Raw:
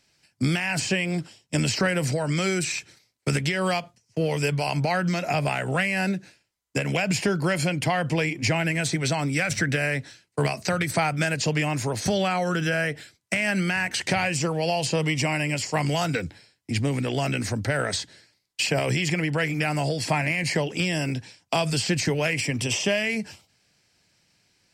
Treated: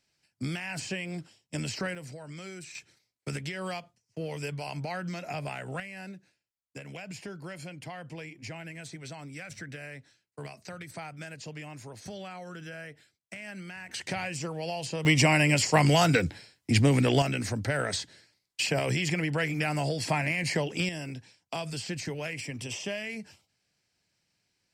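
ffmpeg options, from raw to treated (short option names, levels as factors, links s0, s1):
-af "asetnsamples=n=441:p=0,asendcmd='1.95 volume volume -18dB;2.75 volume volume -11dB;5.8 volume volume -17.5dB;13.89 volume volume -9.5dB;15.05 volume volume 3dB;17.22 volume volume -4dB;20.89 volume volume -11dB',volume=0.316"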